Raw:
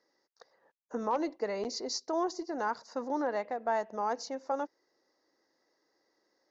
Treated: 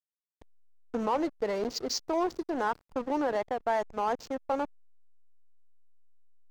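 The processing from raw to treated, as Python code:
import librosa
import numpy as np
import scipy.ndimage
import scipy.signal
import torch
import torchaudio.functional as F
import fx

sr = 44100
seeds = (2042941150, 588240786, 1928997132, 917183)

p1 = fx.level_steps(x, sr, step_db=19)
p2 = x + (p1 * librosa.db_to_amplitude(1.0))
y = fx.backlash(p2, sr, play_db=-32.5)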